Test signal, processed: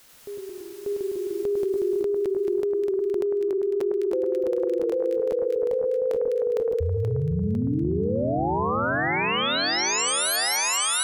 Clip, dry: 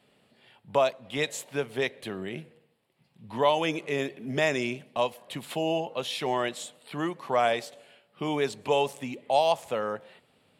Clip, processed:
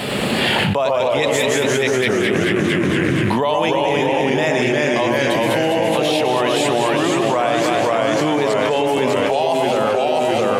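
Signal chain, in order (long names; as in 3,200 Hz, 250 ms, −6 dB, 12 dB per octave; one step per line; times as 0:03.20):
delay that swaps between a low-pass and a high-pass 102 ms, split 1,700 Hz, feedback 73%, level −4 dB
delay with pitch and tempo change per echo 94 ms, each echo −1 semitone, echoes 3
envelope flattener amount 100%
level +1 dB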